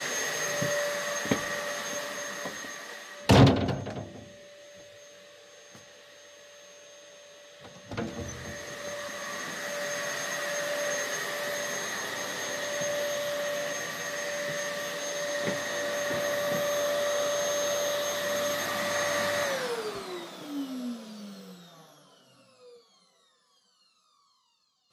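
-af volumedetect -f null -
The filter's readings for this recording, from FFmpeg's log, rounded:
mean_volume: -31.9 dB
max_volume: -7.0 dB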